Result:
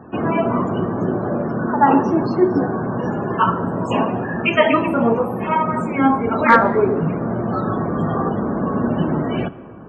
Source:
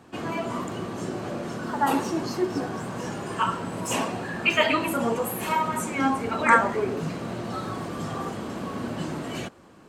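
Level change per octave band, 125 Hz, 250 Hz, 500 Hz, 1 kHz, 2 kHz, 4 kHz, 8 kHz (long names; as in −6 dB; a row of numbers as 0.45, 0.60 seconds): +11.0 dB, +10.5 dB, +10.0 dB, +7.5 dB, +4.0 dB, −1.0 dB, below −15 dB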